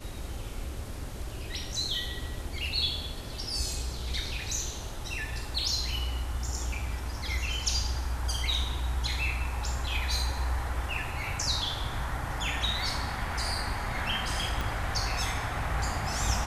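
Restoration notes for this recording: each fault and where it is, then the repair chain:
14.61 pop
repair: de-click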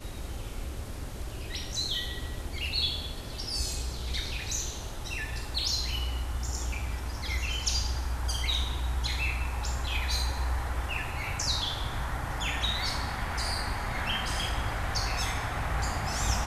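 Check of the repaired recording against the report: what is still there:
14.61 pop

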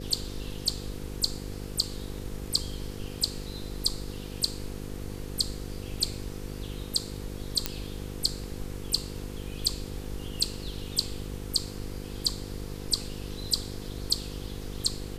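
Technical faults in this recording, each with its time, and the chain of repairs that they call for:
buzz 50 Hz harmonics 10 -39 dBFS
7.66 pop -9 dBFS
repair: de-click; de-hum 50 Hz, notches 10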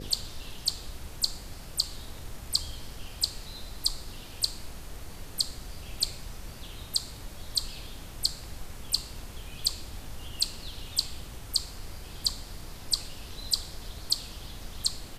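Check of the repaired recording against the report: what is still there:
none

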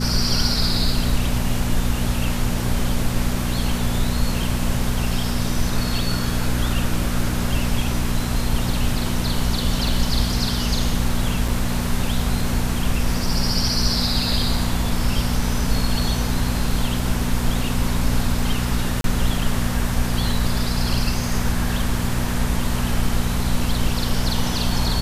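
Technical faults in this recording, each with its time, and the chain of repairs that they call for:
hum 60 Hz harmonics 4 -25 dBFS
9.88 gap 2.1 ms
11.48 gap 4.3 ms
19.01–19.04 gap 32 ms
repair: de-hum 60 Hz, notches 4; interpolate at 9.88, 2.1 ms; interpolate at 11.48, 4.3 ms; interpolate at 19.01, 32 ms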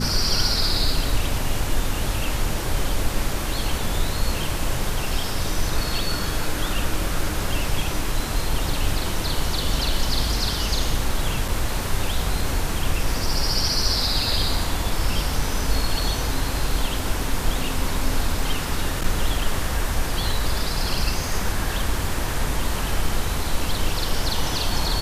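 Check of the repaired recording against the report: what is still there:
none

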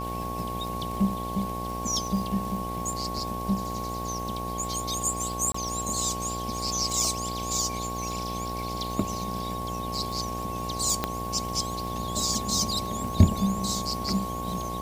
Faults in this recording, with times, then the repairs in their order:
buzz 60 Hz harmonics 15 -35 dBFS
crackle 57/s -34 dBFS
tone 1100 Hz -33 dBFS
5.52–5.54 gap 24 ms
11.04 pop -10 dBFS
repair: de-click; de-hum 60 Hz, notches 15; notch 1100 Hz, Q 30; interpolate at 5.52, 24 ms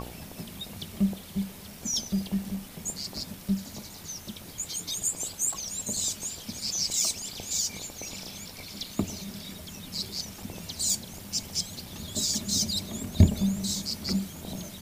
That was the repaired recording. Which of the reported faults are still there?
11.04 pop

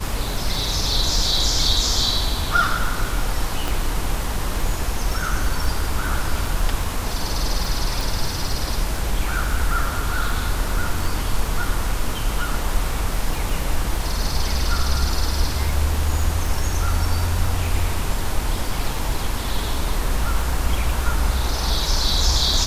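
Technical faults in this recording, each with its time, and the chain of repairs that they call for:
crackle 24/s -25 dBFS
3.68 pop
8.01 pop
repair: de-click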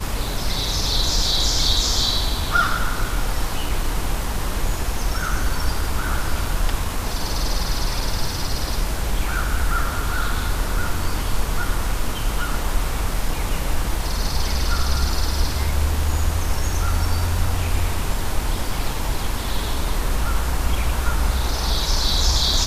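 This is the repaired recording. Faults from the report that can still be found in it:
3.68 pop

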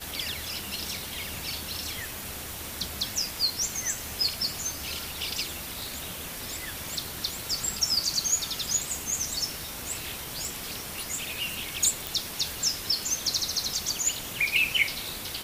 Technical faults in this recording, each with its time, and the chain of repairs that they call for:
crackle 22/s -38 dBFS
10.45 pop
12.07 pop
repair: de-click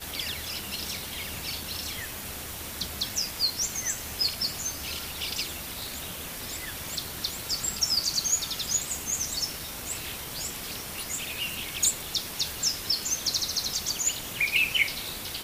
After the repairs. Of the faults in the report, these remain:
12.07 pop

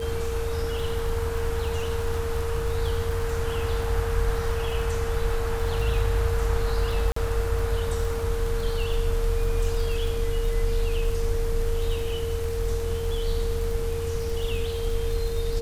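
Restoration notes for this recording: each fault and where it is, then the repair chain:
crackle 31/s -30 dBFS
tone 460 Hz -29 dBFS
7.12–7.16 gap 44 ms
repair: de-click; notch 460 Hz, Q 30; interpolate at 7.12, 44 ms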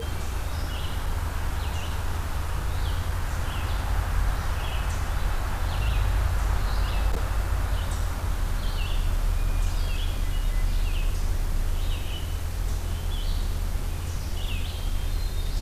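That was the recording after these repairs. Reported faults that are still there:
none

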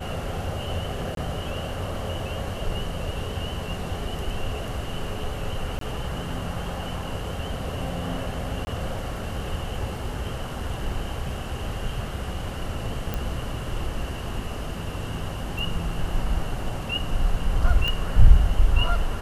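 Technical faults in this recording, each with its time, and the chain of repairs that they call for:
1.15–1.17 gap 22 ms
5.79–5.81 gap 23 ms
8.65–8.67 gap 20 ms
13.14 pop
17.88 pop -13 dBFS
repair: de-click; interpolate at 1.15, 22 ms; interpolate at 5.79, 23 ms; interpolate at 8.65, 20 ms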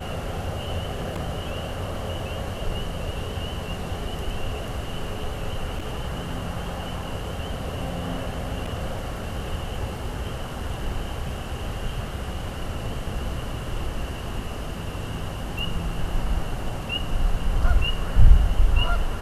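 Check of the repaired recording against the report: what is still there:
none

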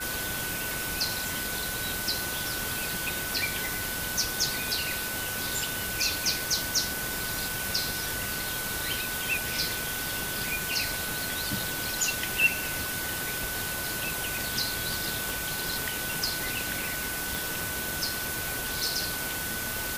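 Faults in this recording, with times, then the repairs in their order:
tone 1500 Hz -36 dBFS
3.66 pop
15.3 pop
17.35 pop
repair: de-click; notch 1500 Hz, Q 30

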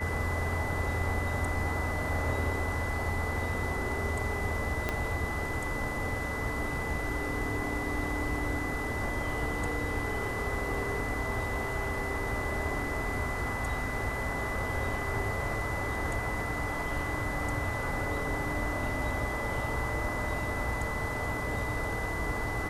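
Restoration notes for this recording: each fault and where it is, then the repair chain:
tone 2000 Hz -36 dBFS
4.89 pop -15 dBFS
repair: de-click; notch 2000 Hz, Q 30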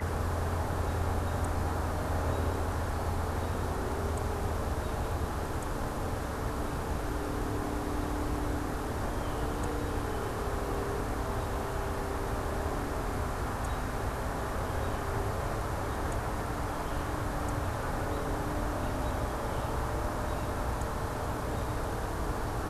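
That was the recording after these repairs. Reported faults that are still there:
4.89 pop

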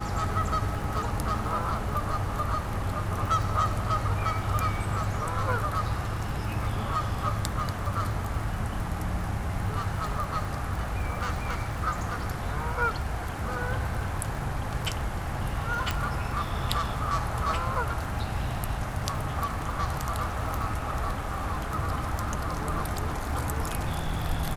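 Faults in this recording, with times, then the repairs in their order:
crackle 49/s -34 dBFS
15.91 pop -12 dBFS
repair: de-click

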